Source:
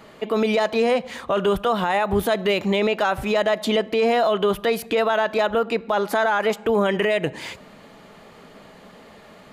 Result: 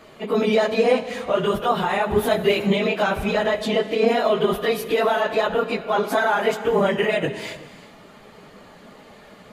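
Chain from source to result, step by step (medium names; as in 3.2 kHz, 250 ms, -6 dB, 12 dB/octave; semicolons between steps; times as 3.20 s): phase randomisation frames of 50 ms; 3.23–4.07 s: treble shelf 8.1 kHz -7 dB; on a send: reverberation, pre-delay 3 ms, DRR 11.5 dB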